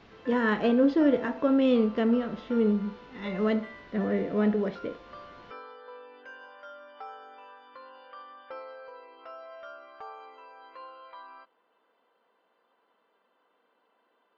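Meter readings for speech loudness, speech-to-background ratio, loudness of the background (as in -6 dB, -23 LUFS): -26.5 LUFS, 19.5 dB, -46.0 LUFS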